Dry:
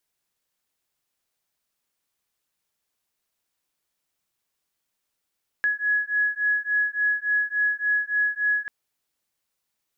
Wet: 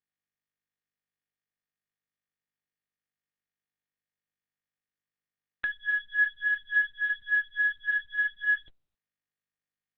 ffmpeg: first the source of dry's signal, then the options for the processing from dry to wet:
-f lavfi -i "aevalsrc='0.0631*(sin(2*PI*1680*t)+sin(2*PI*1683.5*t))':d=3.04:s=44100"
-af "aeval=exprs='0.133*(cos(1*acos(clip(val(0)/0.133,-1,1)))-cos(1*PI/2))+0.0668*(cos(3*acos(clip(val(0)/0.133,-1,1)))-cos(3*PI/2))+0.0119*(cos(5*acos(clip(val(0)/0.133,-1,1)))-cos(5*PI/2))+0.00531*(cos(6*acos(clip(val(0)/0.133,-1,1)))-cos(6*PI/2))+0.00119*(cos(8*acos(clip(val(0)/0.133,-1,1)))-cos(8*PI/2))':c=same" -ar 48000 -c:a libopus -b:a 6k

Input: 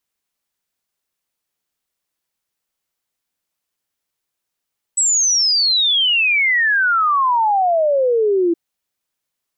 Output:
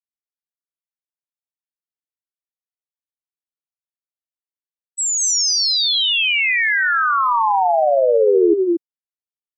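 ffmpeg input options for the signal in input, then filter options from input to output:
-f lavfi -i "aevalsrc='0.237*clip(min(t,3.57-t)/0.01,0,1)*sin(2*PI*8000*3.57/log(330/8000)*(exp(log(330/8000)*t/3.57)-1))':d=3.57:s=44100"
-filter_complex "[0:a]agate=range=0.0224:threshold=0.251:ratio=3:detection=peak,equalizer=f=250:t=o:w=2.4:g=6,asplit=2[s0][s1];[s1]aecho=0:1:198.3|230.3:0.251|0.708[s2];[s0][s2]amix=inputs=2:normalize=0"

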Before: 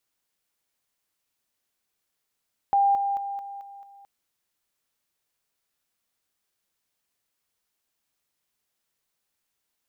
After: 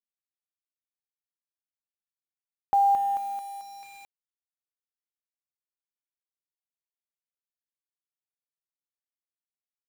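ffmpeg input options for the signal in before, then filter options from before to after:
-f lavfi -i "aevalsrc='pow(10,(-17-6*floor(t/0.22))/20)*sin(2*PI*798*t)':d=1.32:s=44100"
-af "acrusher=bits=7:mix=0:aa=0.000001"

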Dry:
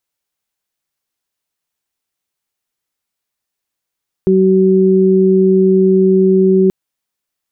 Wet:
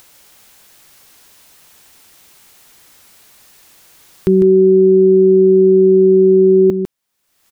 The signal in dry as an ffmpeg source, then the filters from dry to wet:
-f lavfi -i "aevalsrc='0.282*sin(2*PI*189*t)+0.355*sin(2*PI*378*t)':d=2.43:s=44100"
-af "acompressor=mode=upward:threshold=0.0794:ratio=2.5,aecho=1:1:151:0.398"

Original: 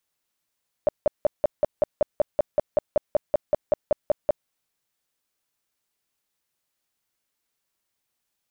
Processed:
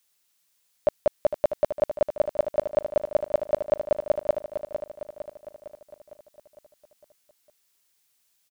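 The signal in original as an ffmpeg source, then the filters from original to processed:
-f lavfi -i "aevalsrc='0.188*sin(2*PI*599*mod(t,0.19))*lt(mod(t,0.19),10/599)':d=3.61:s=44100"
-filter_complex "[0:a]highshelf=f=2000:g=10.5,asplit=2[s0][s1];[s1]aecho=0:1:456|912|1368|1824|2280|2736|3192:0.355|0.199|0.111|0.0623|0.0349|0.0195|0.0109[s2];[s0][s2]amix=inputs=2:normalize=0"

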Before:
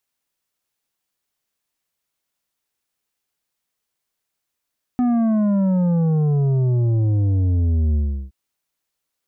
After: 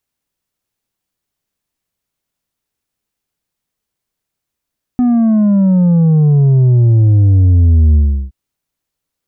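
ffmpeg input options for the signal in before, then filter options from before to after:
-f lavfi -i "aevalsrc='0.158*clip((3.32-t)/0.36,0,1)*tanh(2.51*sin(2*PI*250*3.32/log(65/250)*(exp(log(65/250)*t/3.32)-1)))/tanh(2.51)':d=3.32:s=44100"
-af "lowshelf=f=340:g=10.5"

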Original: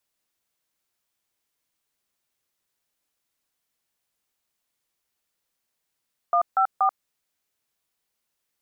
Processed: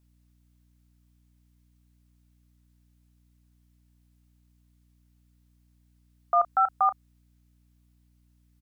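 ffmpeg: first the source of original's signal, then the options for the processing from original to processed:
-f lavfi -i "aevalsrc='0.106*clip(min(mod(t,0.238),0.086-mod(t,0.238))/0.002,0,1)*(eq(floor(t/0.238),0)*(sin(2*PI*697*mod(t,0.238))+sin(2*PI*1209*mod(t,0.238)))+eq(floor(t/0.238),1)*(sin(2*PI*770*mod(t,0.238))+sin(2*PI*1336*mod(t,0.238)))+eq(floor(t/0.238),2)*(sin(2*PI*770*mod(t,0.238))+sin(2*PI*1209*mod(t,0.238))))':d=0.714:s=44100"
-filter_complex "[0:a]lowshelf=f=330:g=-9,aeval=exprs='val(0)+0.000631*(sin(2*PI*60*n/s)+sin(2*PI*2*60*n/s)/2+sin(2*PI*3*60*n/s)/3+sin(2*PI*4*60*n/s)/4+sin(2*PI*5*60*n/s)/5)':c=same,asplit=2[s0][s1];[s1]adelay=33,volume=0.211[s2];[s0][s2]amix=inputs=2:normalize=0"

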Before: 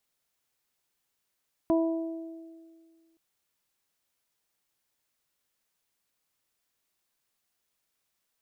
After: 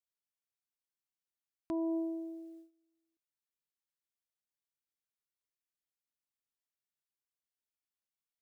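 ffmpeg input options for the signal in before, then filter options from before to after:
-f lavfi -i "aevalsrc='0.0891*pow(10,-3*t/1.95)*sin(2*PI*328*t)+0.0562*pow(10,-3*t/1.47)*sin(2*PI*656*t)+0.0211*pow(10,-3*t/0.81)*sin(2*PI*984*t)':d=1.47:s=44100"
-af "agate=range=0.112:threshold=0.00251:ratio=16:detection=peak,equalizer=f=670:w=1.5:g=-6.5,alimiter=level_in=1.68:limit=0.0631:level=0:latency=1,volume=0.596"

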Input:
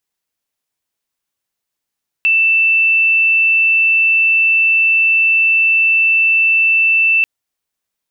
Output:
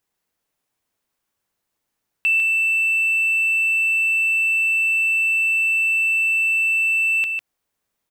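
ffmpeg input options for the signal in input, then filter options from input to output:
-f lavfi -i "aevalsrc='0.355*sin(2*PI*2660*t)':d=4.99:s=44100"
-filter_complex "[0:a]asplit=2[s0][s1];[s1]adynamicsmooth=sensitivity=4:basefreq=2600,volume=0.891[s2];[s0][s2]amix=inputs=2:normalize=0,alimiter=limit=0.188:level=0:latency=1:release=228,aecho=1:1:151:0.447"

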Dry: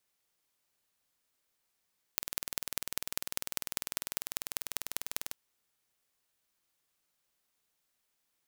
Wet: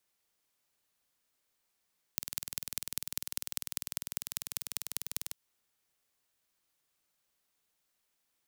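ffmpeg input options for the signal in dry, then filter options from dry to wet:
-f lavfi -i "aevalsrc='0.75*eq(mod(n,2194),0)*(0.5+0.5*eq(mod(n,8776),0))':d=3.18:s=44100"
-filter_complex "[0:a]acrossover=split=200|3000[s0][s1][s2];[s1]acompressor=threshold=0.00282:ratio=2.5[s3];[s0][s3][s2]amix=inputs=3:normalize=0"

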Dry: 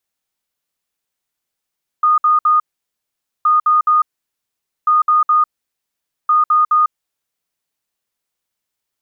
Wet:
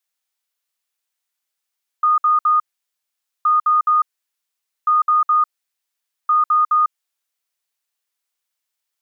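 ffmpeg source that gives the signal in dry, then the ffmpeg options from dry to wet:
-f lavfi -i "aevalsrc='0.355*sin(2*PI*1230*t)*clip(min(mod(mod(t,1.42),0.21),0.15-mod(mod(t,1.42),0.21))/0.005,0,1)*lt(mod(t,1.42),0.63)':d=5.68:s=44100"
-af "highpass=f=1100:p=1"

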